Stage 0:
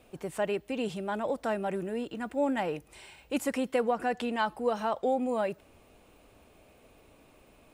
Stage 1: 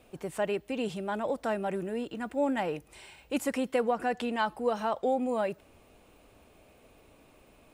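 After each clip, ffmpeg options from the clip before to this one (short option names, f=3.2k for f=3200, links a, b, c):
-af anull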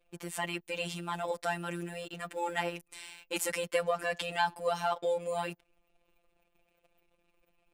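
-af "afftfilt=real='hypot(re,im)*cos(PI*b)':imag='0':win_size=1024:overlap=0.75,tiltshelf=f=1.3k:g=-6,anlmdn=0.0001,volume=4dB"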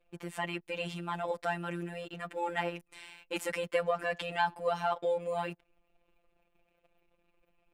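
-af "bass=f=250:g=1,treble=f=4k:g=-10"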